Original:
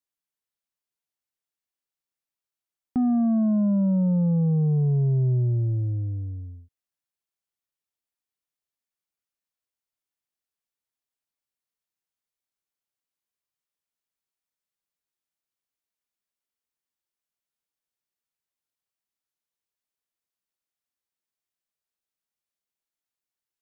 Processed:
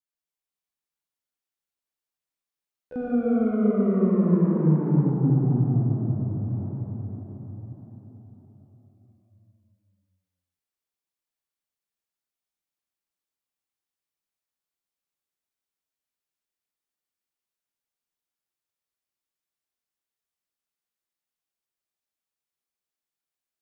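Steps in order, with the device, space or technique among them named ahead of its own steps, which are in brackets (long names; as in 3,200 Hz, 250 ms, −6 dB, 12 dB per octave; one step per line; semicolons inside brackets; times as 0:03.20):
shimmer-style reverb (pitch-shifted copies added +12 semitones −7 dB; convolution reverb RT60 5.6 s, pre-delay 44 ms, DRR −6.5 dB)
0:05.10–0:06.51: high-frequency loss of the air 480 metres
level −8 dB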